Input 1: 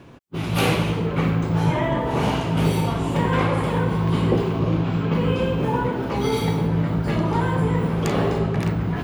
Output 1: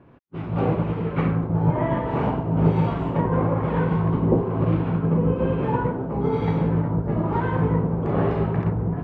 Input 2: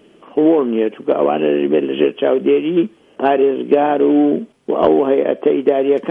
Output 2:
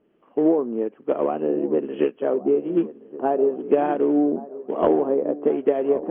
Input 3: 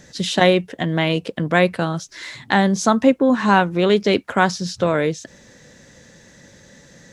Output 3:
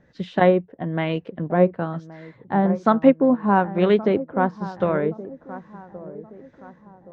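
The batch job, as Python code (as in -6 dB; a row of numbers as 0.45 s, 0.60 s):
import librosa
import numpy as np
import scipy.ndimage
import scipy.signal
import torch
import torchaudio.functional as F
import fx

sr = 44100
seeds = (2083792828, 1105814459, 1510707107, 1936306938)

y = fx.echo_wet_lowpass(x, sr, ms=1123, feedback_pct=51, hz=1100.0, wet_db=-11)
y = fx.filter_lfo_lowpass(y, sr, shape='sine', hz=1.1, low_hz=840.0, high_hz=2200.0, q=0.78)
y = fx.upward_expand(y, sr, threshold_db=-30.0, expansion=1.5)
y = y * 10.0 ** (-22 / 20.0) / np.sqrt(np.mean(np.square(y)))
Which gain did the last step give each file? +1.5 dB, -5.0 dB, +0.5 dB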